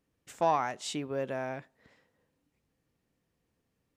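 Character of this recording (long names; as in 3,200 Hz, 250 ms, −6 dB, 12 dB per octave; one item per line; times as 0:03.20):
background noise floor −80 dBFS
spectral slope −4.5 dB per octave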